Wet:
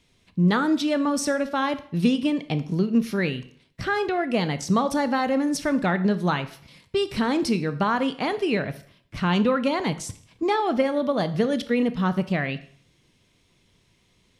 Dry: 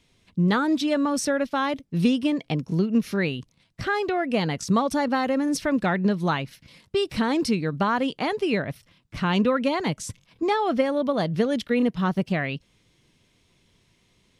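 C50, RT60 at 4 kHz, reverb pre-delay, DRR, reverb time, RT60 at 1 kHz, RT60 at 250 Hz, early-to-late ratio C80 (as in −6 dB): 15.0 dB, 0.50 s, 18 ms, 11.5 dB, 0.55 s, 0.55 s, 0.65 s, 18.0 dB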